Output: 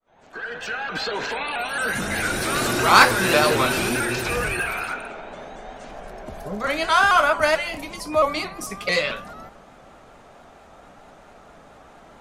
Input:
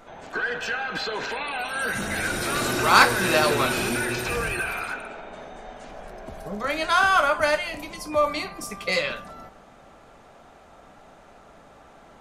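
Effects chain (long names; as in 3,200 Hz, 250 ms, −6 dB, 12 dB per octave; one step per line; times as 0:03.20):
fade in at the beginning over 1.08 s
pitch modulation by a square or saw wave saw up 4.5 Hz, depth 100 cents
level +2.5 dB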